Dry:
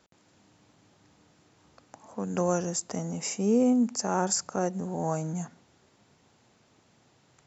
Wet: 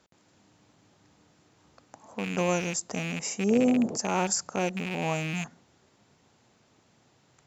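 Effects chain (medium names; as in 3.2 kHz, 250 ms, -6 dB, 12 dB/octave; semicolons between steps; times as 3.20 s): rattle on loud lows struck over -34 dBFS, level -24 dBFS; Chebyshev shaper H 2 -43 dB, 3 -36 dB, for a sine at -13 dBFS; 3.49–3.96 s: band noise 120–610 Hz -36 dBFS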